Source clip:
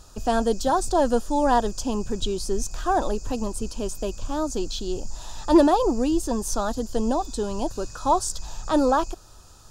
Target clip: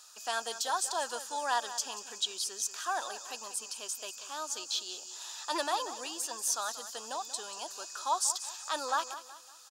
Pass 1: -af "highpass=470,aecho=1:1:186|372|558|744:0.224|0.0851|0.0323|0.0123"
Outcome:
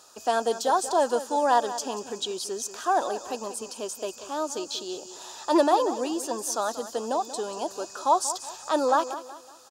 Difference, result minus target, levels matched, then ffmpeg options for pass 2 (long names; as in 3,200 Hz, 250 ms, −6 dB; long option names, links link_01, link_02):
500 Hz band +8.0 dB
-af "highpass=1500,aecho=1:1:186|372|558|744:0.224|0.0851|0.0323|0.0123"